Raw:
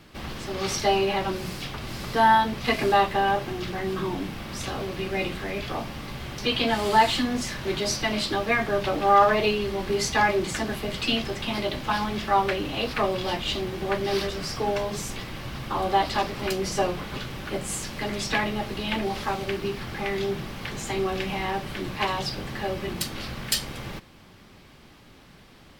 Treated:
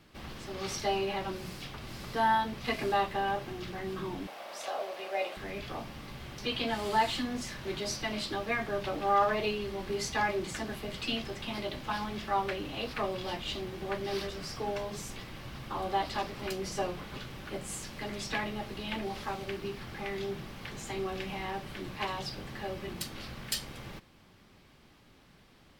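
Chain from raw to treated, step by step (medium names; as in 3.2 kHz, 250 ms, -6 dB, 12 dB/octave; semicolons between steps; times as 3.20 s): 4.27–5.37 s: resonant high-pass 630 Hz, resonance Q 4.2; trim -8.5 dB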